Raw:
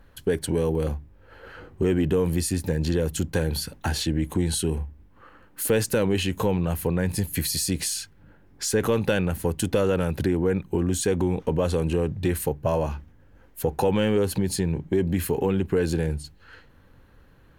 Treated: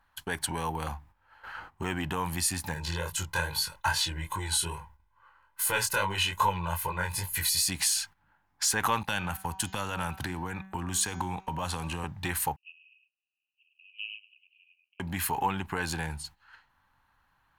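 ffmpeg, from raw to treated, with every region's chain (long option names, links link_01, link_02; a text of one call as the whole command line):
ffmpeg -i in.wav -filter_complex "[0:a]asettb=1/sr,asplit=3[link_01][link_02][link_03];[link_01]atrim=end=2.744[link_04];[link_02]atrim=start=2.74:end=7.67,asetpts=PTS-STARTPTS,afade=type=in:duration=0.004:curve=qsin,afade=type=out:start_time=4.926:duration=0.004:curve=qsin,aecho=1:1:2:0.78,atrim=end_sample=217413,flanger=delay=20:depth=4.3:speed=2.4[link_05];[link_03]atrim=start=7.666[link_06];[link_04][link_05]acrossfade=duration=0.004:curve1=hsin:curve2=qsin[link_07];[link_07][link_06]acrossfade=duration=0.004:curve1=qsin:curve2=hsin,asettb=1/sr,asplit=3[link_08][link_09][link_10];[link_08]atrim=end=9.034[link_11];[link_09]atrim=start=9.03:end=12.04,asetpts=PTS-STARTPTS,afade=type=in:duration=0.004:curve=qsin,afade=type=out:start_time=3.006:duration=0.004:curve=qsin,agate=range=-12dB:threshold=-32dB:ratio=16:release=100:detection=peak,bandreject=frequency=190.6:width_type=h:width=4,bandreject=frequency=381.2:width_type=h:width=4,bandreject=frequency=571.8:width_type=h:width=4,bandreject=frequency=762.4:width_type=h:width=4,bandreject=frequency=953:width_type=h:width=4,bandreject=frequency=1143.6:width_type=h:width=4,bandreject=frequency=1334.2:width_type=h:width=4,bandreject=frequency=1524.8:width_type=h:width=4,bandreject=frequency=1715.4:width_type=h:width=4,bandreject=frequency=1906:width_type=h:width=4,bandreject=frequency=2096.6:width_type=h:width=4,bandreject=frequency=2287.2:width_type=h:width=4,bandreject=frequency=2477.8:width_type=h:width=4,bandreject=frequency=2668.4:width_type=h:width=4,bandreject=frequency=2859:width_type=h:width=4,bandreject=frequency=3049.6:width_type=h:width=4,bandreject=frequency=3240.2:width_type=h:width=4,bandreject=frequency=3430.8:width_type=h:width=4,bandreject=frequency=3621.4:width_type=h:width=4,bandreject=frequency=3812:width_type=h:width=4,bandreject=frequency=4002.6:width_type=h:width=4,bandreject=frequency=4193.2:width_type=h:width=4,bandreject=frequency=4383.8:width_type=h:width=4,bandreject=frequency=4574.4:width_type=h:width=4,bandreject=frequency=4765:width_type=h:width=4,bandreject=frequency=4955.6:width_type=h:width=4,bandreject=frequency=5146.2:width_type=h:width=4,bandreject=frequency=5336.8:width_type=h:width=4,bandreject=frequency=5527.4:width_type=h:width=4,bandreject=frequency=5718:width_type=h:width=4,bandreject=frequency=5908.6:width_type=h:width=4,bandreject=frequency=6099.2:width_type=h:width=4,bandreject=frequency=6289.8:width_type=h:width=4,bandreject=frequency=6480.4:width_type=h:width=4,bandreject=frequency=6671:width_type=h:width=4,bandreject=frequency=6861.6:width_type=h:width=4,bandreject=frequency=7052.2:width_type=h:width=4,acrossover=split=270|3000[link_12][link_13][link_14];[link_13]acompressor=threshold=-29dB:ratio=3:attack=3.2:release=140:knee=2.83:detection=peak[link_15];[link_12][link_15][link_14]amix=inputs=3:normalize=0[link_16];[link_10]atrim=start=12.036[link_17];[link_11][link_16]acrossfade=duration=0.004:curve1=hsin:curve2=qsin[link_18];[link_18][link_17]acrossfade=duration=0.004:curve1=qsin:curve2=hsin,asettb=1/sr,asplit=3[link_19][link_20][link_21];[link_19]atrim=end=12.564[link_22];[link_20]atrim=start=12.56:end=15,asetpts=PTS-STARTPTS,afade=type=in:duration=0.004:curve=qsin,afade=type=out:start_time=2.436:duration=0.004:curve=qsin,asuperpass=centerf=2700:order=8:qfactor=5.8,aecho=1:1:104:0.531,atrim=end_sample=107604[link_23];[link_21]atrim=start=14.996[link_24];[link_22][link_23]acrossfade=duration=0.004:curve1=hsin:curve2=qsin[link_25];[link_25][link_24]acrossfade=duration=0.004:curve1=qsin:curve2=hsin,agate=range=-11dB:threshold=-44dB:ratio=16:detection=peak,lowshelf=frequency=640:width_type=q:width=3:gain=-11,volume=1.5dB" out.wav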